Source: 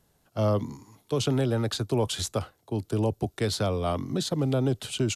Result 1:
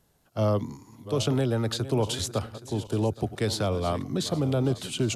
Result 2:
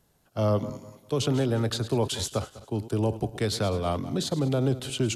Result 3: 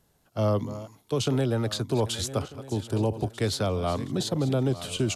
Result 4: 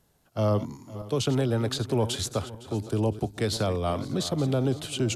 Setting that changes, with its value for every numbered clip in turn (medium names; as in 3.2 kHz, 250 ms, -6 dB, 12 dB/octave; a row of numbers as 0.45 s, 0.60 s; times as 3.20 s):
backward echo that repeats, time: 411 ms, 100 ms, 621 ms, 255 ms